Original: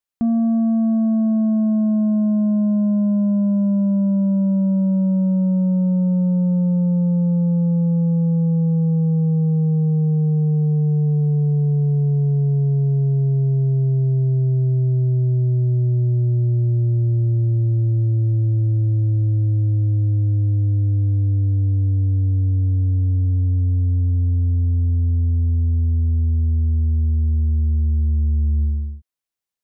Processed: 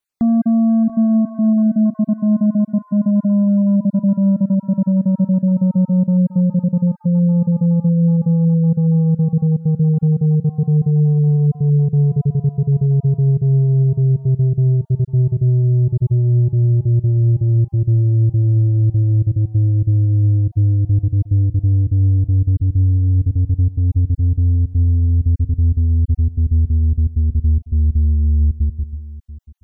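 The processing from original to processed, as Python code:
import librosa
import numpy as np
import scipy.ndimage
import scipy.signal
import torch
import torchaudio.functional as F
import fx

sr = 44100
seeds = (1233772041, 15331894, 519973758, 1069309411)

y = fx.spec_dropout(x, sr, seeds[0], share_pct=29)
y = fx.peak_eq(y, sr, hz=800.0, db=fx.line((22.57, -14.0), (23.17, -5.5)), octaves=0.87, at=(22.57, 23.17), fade=0.02)
y = y + 10.0 ** (-17.5 / 20.0) * np.pad(y, (int(686 * sr / 1000.0), 0))[:len(y)]
y = y * librosa.db_to_amplitude(4.0)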